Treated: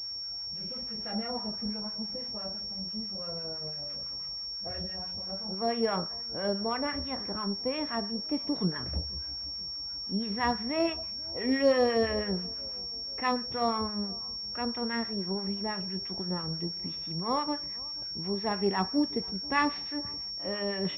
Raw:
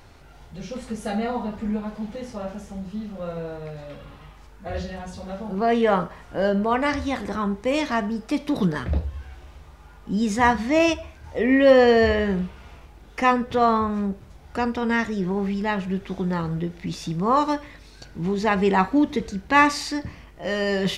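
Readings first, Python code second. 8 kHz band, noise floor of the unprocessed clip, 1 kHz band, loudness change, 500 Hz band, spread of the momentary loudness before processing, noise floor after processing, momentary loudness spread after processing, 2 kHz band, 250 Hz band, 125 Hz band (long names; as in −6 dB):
below −20 dB, −47 dBFS, −10.5 dB, −8.5 dB, −10.0 dB, 16 LU, −38 dBFS, 6 LU, −11.5 dB, −9.5 dB, −10.0 dB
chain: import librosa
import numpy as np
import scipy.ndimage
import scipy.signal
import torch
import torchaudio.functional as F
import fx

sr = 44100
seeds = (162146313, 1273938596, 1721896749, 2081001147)

y = np.where(x < 0.0, 10.0 ** (-3.0 / 20.0) * x, x)
y = scipy.signal.sosfilt(scipy.signal.butter(2, 50.0, 'highpass', fs=sr, output='sos'), y)
y = fx.harmonic_tremolo(y, sr, hz=6.0, depth_pct=70, crossover_hz=950.0)
y = fx.echo_bbd(y, sr, ms=484, stages=4096, feedback_pct=56, wet_db=-24)
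y = fx.pwm(y, sr, carrier_hz=5500.0)
y = F.gain(torch.from_numpy(y), -5.5).numpy()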